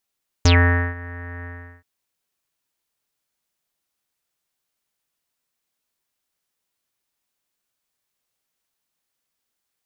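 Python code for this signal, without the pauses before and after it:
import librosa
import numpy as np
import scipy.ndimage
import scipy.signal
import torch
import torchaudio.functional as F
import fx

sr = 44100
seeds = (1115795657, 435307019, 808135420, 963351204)

y = fx.sub_voice(sr, note=41, wave='square', cutoff_hz=1800.0, q=11.0, env_oct=2.0, env_s=0.11, attack_ms=3.4, decay_s=0.49, sustain_db=-22, release_s=0.39, note_s=0.99, slope=24)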